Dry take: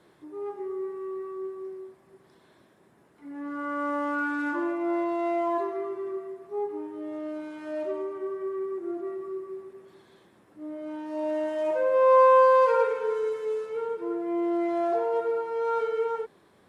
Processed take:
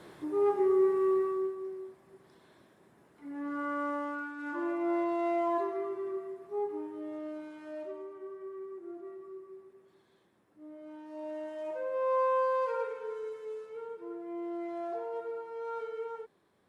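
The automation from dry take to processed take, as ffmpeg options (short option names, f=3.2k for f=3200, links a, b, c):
-af "volume=19dB,afade=t=out:st=1.11:d=0.45:silence=0.334965,afade=t=out:st=3.57:d=0.78:silence=0.237137,afade=t=in:st=4.35:d=0.41:silence=0.281838,afade=t=out:st=6.78:d=1.19:silence=0.398107"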